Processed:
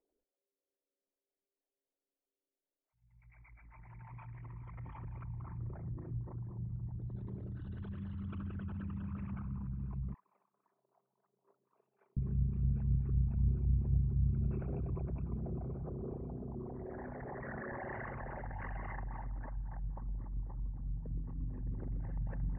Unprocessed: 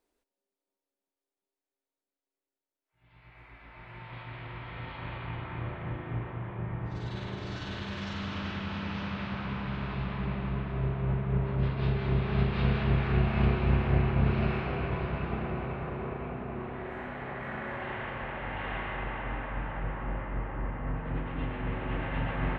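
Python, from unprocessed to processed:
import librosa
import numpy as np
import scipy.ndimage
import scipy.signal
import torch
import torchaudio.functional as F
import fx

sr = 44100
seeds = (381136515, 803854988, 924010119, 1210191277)

y = fx.envelope_sharpen(x, sr, power=3.0)
y = fx.highpass(y, sr, hz=690.0, slope=24, at=(10.14, 12.17))
y = y * 10.0 ** (-5.5 / 20.0)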